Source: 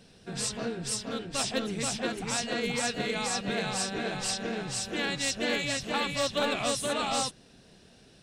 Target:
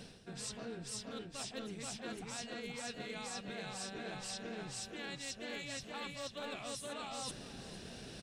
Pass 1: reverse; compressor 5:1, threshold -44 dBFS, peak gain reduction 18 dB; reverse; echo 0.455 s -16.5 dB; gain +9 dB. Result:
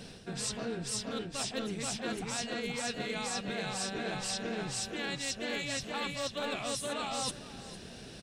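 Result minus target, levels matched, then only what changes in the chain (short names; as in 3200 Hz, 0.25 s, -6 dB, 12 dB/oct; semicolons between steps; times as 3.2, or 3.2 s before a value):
compressor: peak gain reduction -8 dB
change: compressor 5:1, threshold -54 dBFS, peak gain reduction 26 dB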